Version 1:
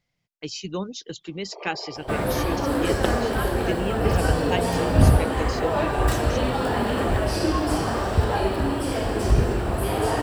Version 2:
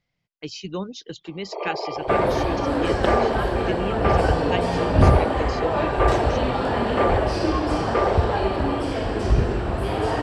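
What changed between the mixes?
first sound +10.5 dB
master: add low-pass filter 5,200 Hz 12 dB per octave

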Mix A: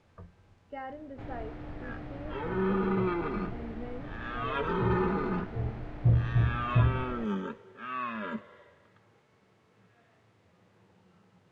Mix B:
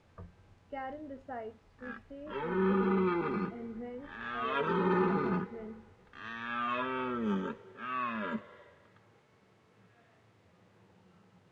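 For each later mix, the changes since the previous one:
first sound: muted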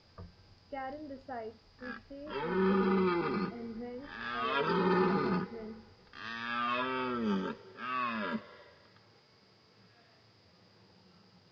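background: add low-pass with resonance 4,900 Hz, resonance Q 14

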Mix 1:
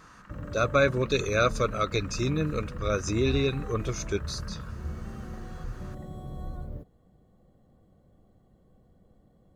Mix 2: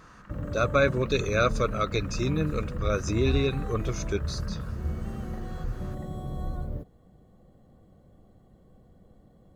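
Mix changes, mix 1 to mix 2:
speech: add high-shelf EQ 7,300 Hz −6 dB
background +4.5 dB

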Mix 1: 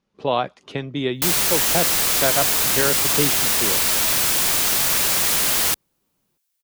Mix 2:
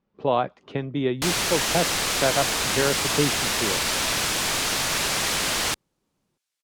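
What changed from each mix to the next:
speech: add high-shelf EQ 2,800 Hz −10.5 dB
master: add high-frequency loss of the air 55 metres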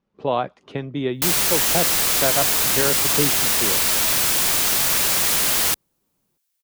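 master: remove high-frequency loss of the air 55 metres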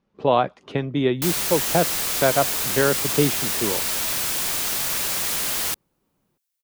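speech +3.5 dB
background −5.5 dB

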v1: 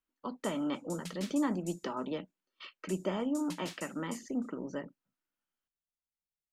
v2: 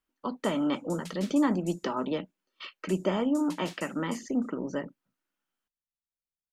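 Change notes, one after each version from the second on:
speech +6.0 dB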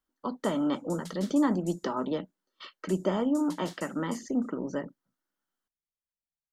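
master: add parametric band 2,500 Hz −12 dB 0.36 octaves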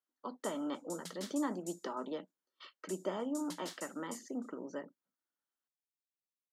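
speech −8.0 dB
master: add high-pass filter 280 Hz 12 dB per octave

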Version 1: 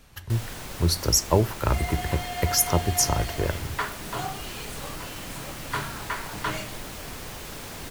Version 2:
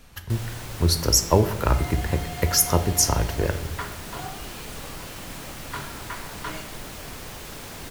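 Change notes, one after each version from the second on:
second sound −8.0 dB
reverb: on, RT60 1.0 s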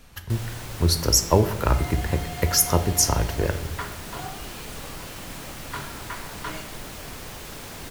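nothing changed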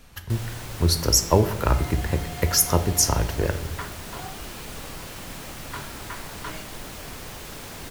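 second sound: send −11.5 dB

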